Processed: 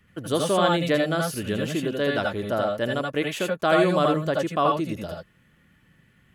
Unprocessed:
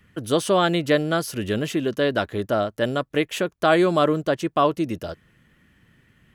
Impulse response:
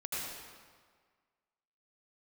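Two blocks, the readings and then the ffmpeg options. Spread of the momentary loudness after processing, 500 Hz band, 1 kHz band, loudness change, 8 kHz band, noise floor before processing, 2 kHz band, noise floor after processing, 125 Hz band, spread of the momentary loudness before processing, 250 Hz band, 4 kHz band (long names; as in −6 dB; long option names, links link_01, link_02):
7 LU, −2.0 dB, −1.0 dB, −1.5 dB, −1.0 dB, −62 dBFS, −1.0 dB, −61 dBFS, −0.5 dB, 7 LU, −2.5 dB, −1.5 dB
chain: -filter_complex "[1:a]atrim=start_sample=2205,atrim=end_sample=3969[link_01];[0:a][link_01]afir=irnorm=-1:irlink=0,volume=1dB"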